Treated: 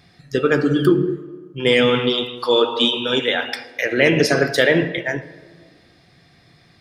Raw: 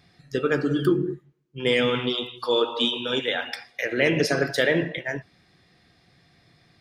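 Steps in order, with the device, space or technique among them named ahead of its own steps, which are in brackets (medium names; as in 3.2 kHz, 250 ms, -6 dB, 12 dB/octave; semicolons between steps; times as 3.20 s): filtered reverb send (on a send: high-pass 150 Hz + low-pass 5.3 kHz + reverberation RT60 1.7 s, pre-delay 40 ms, DRR 15.5 dB); on the sum: trim +6 dB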